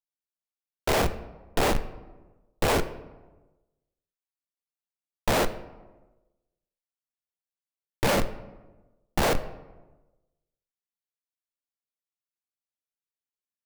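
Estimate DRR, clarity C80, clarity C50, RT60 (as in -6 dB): 10.0 dB, 16.0 dB, 14.0 dB, 1.2 s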